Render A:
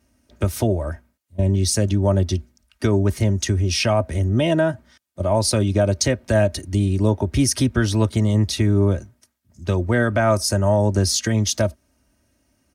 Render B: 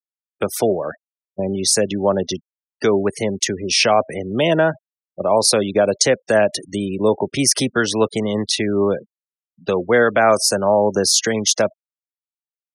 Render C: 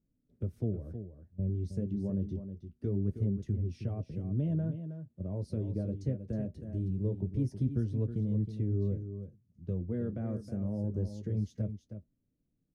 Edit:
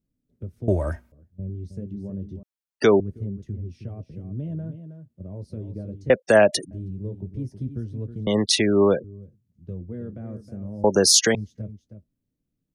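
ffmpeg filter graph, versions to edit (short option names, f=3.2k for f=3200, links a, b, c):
-filter_complex "[1:a]asplit=4[a][b][c][d];[2:a]asplit=6[e][f][g][h][i][j];[e]atrim=end=0.682[k];[0:a]atrim=start=0.678:end=1.122[l];[f]atrim=start=1.118:end=2.432[m];[a]atrim=start=2.428:end=3.002[n];[g]atrim=start=2.998:end=6.102[o];[b]atrim=start=6.098:end=6.712[p];[h]atrim=start=6.708:end=8.272[q];[c]atrim=start=8.268:end=9.042[r];[i]atrim=start=9.038:end=10.842[s];[d]atrim=start=10.838:end=11.352[t];[j]atrim=start=11.348[u];[k][l]acrossfade=d=0.004:c1=hsin:c2=hsin[v];[v][m]acrossfade=d=0.004:c1=hsin:c2=hsin[w];[w][n]acrossfade=d=0.004:c1=hsin:c2=hsin[x];[x][o]acrossfade=d=0.004:c1=hsin:c2=hsin[y];[y][p]acrossfade=d=0.004:c1=hsin:c2=hsin[z];[z][q]acrossfade=d=0.004:c1=hsin:c2=hsin[aa];[aa][r]acrossfade=d=0.004:c1=hsin:c2=hsin[ab];[ab][s]acrossfade=d=0.004:c1=hsin:c2=hsin[ac];[ac][t]acrossfade=d=0.004:c1=hsin:c2=hsin[ad];[ad][u]acrossfade=d=0.004:c1=hsin:c2=hsin"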